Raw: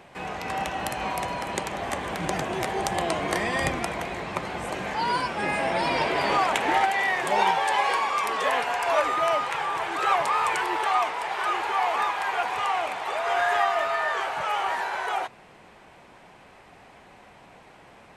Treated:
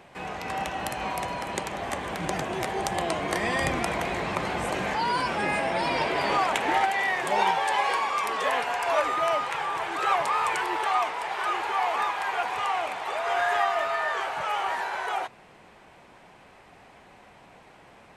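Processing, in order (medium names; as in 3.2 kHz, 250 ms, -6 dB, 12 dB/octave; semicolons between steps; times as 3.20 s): 3.43–5.60 s: level flattener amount 50%; trim -1.5 dB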